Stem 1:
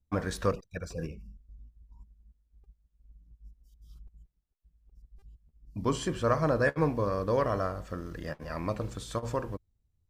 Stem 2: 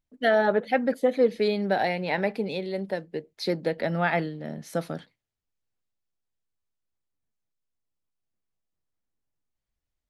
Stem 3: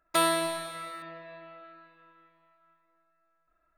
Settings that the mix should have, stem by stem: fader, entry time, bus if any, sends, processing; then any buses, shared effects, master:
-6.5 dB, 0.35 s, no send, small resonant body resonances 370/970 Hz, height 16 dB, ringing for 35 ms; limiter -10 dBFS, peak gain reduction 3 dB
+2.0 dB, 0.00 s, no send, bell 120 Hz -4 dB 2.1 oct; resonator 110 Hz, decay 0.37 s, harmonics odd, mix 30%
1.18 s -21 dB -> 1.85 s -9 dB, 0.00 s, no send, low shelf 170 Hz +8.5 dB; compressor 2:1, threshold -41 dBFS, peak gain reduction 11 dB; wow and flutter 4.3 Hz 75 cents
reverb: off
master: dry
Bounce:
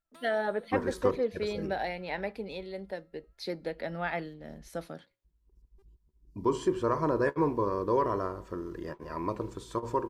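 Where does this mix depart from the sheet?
stem 1: entry 0.35 s -> 0.60 s; stem 2 +2.0 dB -> -5.0 dB

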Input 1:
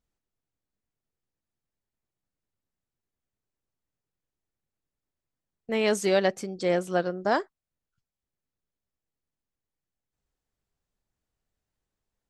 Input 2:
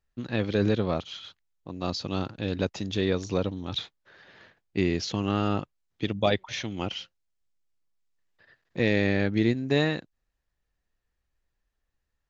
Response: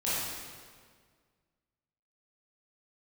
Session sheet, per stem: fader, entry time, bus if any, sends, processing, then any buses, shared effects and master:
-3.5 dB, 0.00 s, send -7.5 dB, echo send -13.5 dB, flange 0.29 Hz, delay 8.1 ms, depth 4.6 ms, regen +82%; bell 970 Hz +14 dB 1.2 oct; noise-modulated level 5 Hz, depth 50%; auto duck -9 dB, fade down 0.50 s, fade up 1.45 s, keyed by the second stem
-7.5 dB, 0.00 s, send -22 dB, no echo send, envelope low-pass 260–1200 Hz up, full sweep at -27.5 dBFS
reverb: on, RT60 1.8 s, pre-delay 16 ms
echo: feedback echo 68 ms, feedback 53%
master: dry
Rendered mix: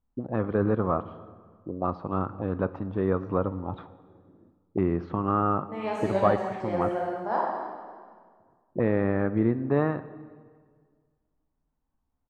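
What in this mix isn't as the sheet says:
stem 2 -7.5 dB -> -1.0 dB; master: extra high shelf 2400 Hz -11.5 dB

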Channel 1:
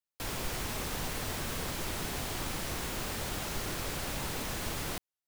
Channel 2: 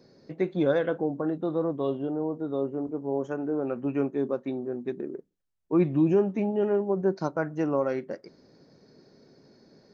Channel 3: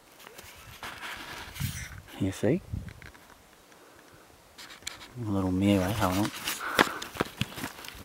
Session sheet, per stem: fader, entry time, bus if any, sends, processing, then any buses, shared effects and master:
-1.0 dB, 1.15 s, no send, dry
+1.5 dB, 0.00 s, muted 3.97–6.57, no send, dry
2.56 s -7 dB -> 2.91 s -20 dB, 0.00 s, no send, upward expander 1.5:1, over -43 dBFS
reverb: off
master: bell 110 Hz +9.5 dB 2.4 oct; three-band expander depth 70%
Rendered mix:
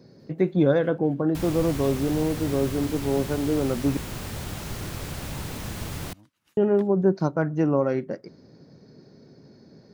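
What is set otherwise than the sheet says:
stem 3 -7.0 dB -> -15.0 dB; master: missing three-band expander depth 70%

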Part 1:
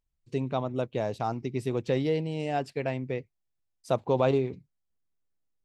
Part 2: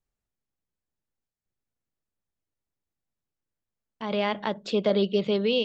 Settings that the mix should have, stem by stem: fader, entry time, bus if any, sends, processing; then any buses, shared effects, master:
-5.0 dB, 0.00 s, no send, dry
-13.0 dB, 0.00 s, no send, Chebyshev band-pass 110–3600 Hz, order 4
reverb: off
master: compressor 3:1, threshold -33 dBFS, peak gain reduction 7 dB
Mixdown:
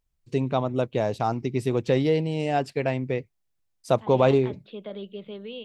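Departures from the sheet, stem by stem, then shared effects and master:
stem 1 -5.0 dB -> +5.0 dB; master: missing compressor 3:1, threshold -33 dBFS, peak gain reduction 7 dB

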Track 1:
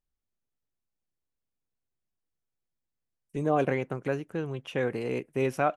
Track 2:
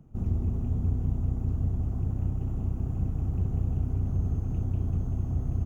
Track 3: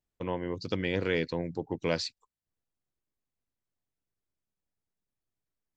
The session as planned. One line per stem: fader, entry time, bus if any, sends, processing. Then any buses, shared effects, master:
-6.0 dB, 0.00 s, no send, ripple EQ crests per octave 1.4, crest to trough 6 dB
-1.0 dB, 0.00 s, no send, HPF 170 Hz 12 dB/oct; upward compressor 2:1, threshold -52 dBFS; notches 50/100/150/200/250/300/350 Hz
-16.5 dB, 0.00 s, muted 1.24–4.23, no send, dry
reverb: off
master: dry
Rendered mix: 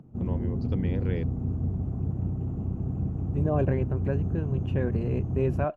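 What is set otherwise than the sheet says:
stem 3 -16.5 dB -> -9.0 dB; master: extra tilt -3.5 dB/oct

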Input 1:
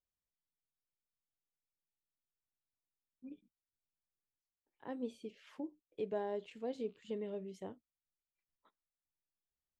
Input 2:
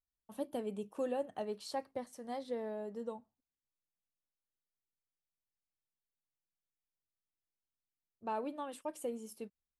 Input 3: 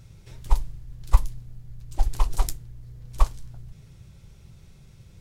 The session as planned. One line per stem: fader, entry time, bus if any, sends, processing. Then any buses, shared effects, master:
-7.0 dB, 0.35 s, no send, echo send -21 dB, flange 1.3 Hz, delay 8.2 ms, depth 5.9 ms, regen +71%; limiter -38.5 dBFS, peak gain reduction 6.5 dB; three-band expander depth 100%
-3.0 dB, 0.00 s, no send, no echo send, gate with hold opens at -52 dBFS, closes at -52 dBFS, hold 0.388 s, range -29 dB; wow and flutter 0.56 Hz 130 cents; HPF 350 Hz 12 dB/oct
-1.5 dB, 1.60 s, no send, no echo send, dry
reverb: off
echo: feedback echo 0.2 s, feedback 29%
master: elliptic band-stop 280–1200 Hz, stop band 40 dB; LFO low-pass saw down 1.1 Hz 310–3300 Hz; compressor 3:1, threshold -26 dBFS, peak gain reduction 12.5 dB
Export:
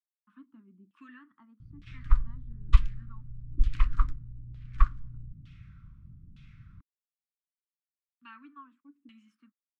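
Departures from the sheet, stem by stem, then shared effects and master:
stem 1: muted; master: missing compressor 3:1, threshold -26 dBFS, peak gain reduction 12.5 dB

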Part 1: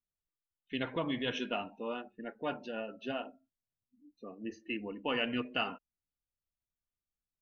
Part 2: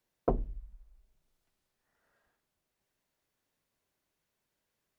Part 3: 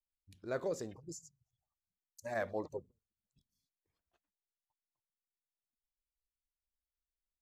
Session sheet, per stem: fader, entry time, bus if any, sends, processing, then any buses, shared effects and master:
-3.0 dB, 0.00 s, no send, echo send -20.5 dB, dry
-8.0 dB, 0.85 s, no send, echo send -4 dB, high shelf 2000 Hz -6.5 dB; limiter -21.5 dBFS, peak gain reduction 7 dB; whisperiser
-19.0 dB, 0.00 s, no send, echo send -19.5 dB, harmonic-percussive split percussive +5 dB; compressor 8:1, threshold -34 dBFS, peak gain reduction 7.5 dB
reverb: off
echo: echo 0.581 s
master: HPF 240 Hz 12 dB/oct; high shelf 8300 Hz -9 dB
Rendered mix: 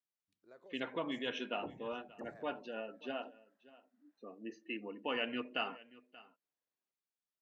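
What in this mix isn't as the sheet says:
stem 2: entry 0.85 s -> 1.35 s; stem 3: missing harmonic-percussive split percussive +5 dB

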